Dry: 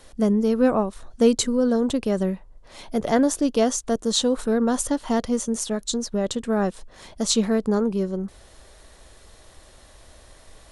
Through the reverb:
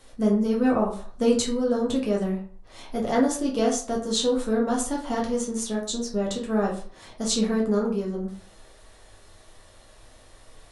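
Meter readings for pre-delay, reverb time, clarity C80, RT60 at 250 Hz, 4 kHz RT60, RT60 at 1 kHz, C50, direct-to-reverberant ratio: 6 ms, 0.45 s, 12.5 dB, 0.45 s, 0.30 s, 0.45 s, 7.5 dB, -2.5 dB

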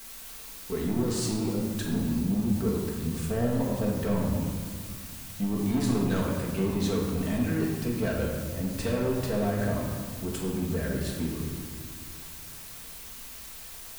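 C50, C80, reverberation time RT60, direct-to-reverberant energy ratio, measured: 2.0 dB, 4.0 dB, 1.9 s, -3.5 dB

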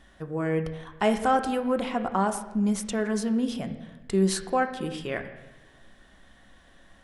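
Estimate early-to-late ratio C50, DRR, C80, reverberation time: 10.5 dB, 6.0 dB, 12.0 dB, 1.1 s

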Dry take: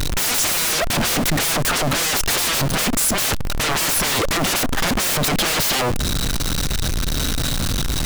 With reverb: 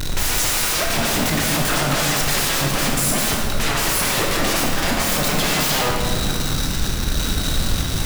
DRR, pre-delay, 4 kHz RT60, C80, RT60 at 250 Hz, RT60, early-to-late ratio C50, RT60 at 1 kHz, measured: -2.5 dB, 16 ms, 1.5 s, 2.0 dB, 2.9 s, 2.3 s, 0.5 dB, 2.1 s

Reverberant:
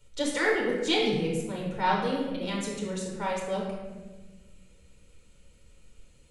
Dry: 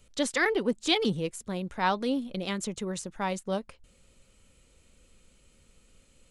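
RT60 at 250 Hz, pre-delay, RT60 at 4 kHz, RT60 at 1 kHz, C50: 2.2 s, 9 ms, 0.80 s, 1.1 s, 1.5 dB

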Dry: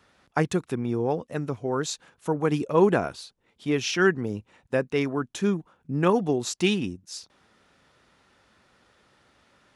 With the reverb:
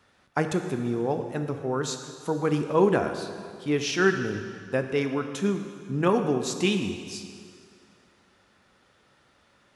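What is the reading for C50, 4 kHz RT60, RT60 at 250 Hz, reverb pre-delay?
7.5 dB, 2.0 s, 2.2 s, 5 ms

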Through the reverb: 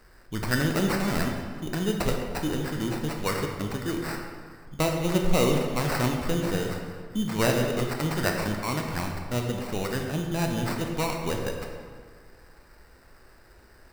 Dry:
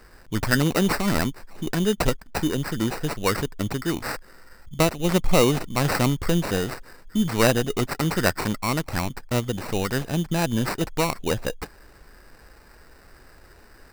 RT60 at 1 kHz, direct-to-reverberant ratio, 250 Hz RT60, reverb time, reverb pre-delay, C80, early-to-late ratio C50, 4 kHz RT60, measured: 1.8 s, 1.5 dB, 1.9 s, 1.8 s, 17 ms, 5.0 dB, 3.5 dB, 1.1 s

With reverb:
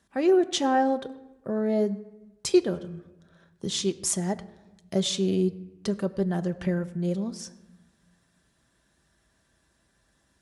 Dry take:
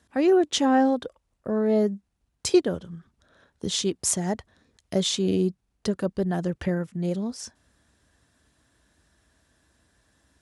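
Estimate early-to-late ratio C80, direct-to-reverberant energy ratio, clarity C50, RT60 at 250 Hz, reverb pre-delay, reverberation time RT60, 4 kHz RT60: 18.0 dB, 8.0 dB, 16.5 dB, 1.6 s, 5 ms, 1.1 s, 0.65 s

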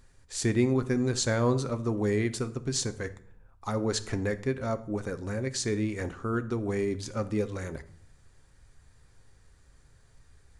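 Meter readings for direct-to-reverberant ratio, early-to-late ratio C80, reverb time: 10.0 dB, 19.5 dB, 0.60 s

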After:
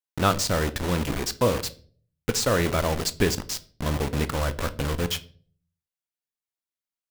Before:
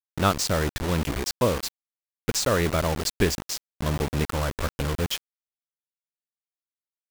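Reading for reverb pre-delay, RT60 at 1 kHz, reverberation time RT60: 4 ms, 0.35 s, 0.45 s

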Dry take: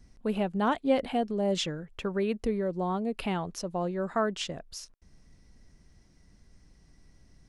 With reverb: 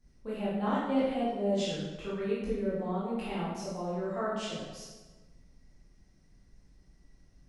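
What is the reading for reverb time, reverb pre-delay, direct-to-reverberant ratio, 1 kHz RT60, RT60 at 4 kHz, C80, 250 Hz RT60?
1.3 s, 13 ms, -10.0 dB, 1.2 s, 0.95 s, 2.5 dB, 1.5 s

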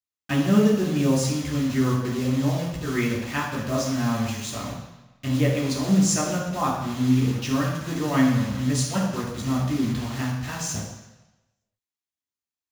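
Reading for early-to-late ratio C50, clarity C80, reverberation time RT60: 3.0 dB, 5.5 dB, 1.0 s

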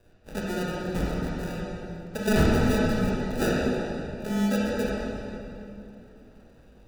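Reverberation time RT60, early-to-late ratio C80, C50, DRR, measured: 2.9 s, -1.5 dB, -3.5 dB, -5.5 dB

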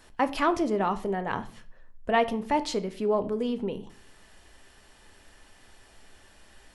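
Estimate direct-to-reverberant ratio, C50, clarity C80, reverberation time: 10.0 dB, 17.0 dB, 21.0 dB, 0.45 s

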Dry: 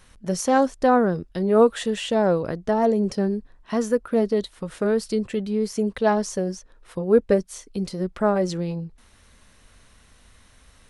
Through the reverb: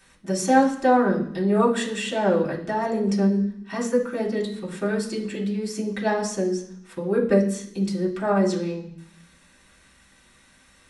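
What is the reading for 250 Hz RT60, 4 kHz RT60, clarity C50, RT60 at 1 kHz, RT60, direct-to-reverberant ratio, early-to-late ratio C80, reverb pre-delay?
0.90 s, 0.80 s, 9.0 dB, 0.65 s, 0.65 s, -4.5 dB, 12.5 dB, 3 ms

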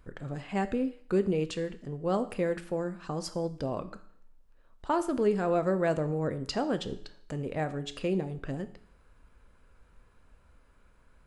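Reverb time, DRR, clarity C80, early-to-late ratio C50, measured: 0.60 s, 10.0 dB, 18.0 dB, 15.0 dB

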